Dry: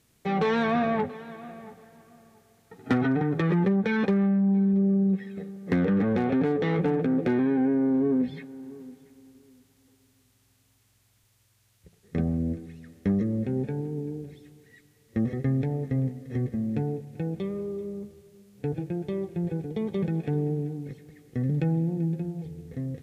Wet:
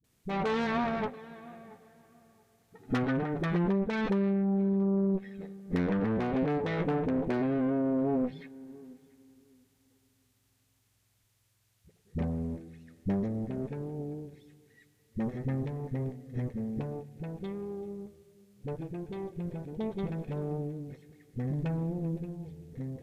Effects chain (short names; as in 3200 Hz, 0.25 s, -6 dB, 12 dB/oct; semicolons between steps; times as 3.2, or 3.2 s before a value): added harmonics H 4 -13 dB, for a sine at -14.5 dBFS; dispersion highs, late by 42 ms, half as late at 300 Hz; gain -6 dB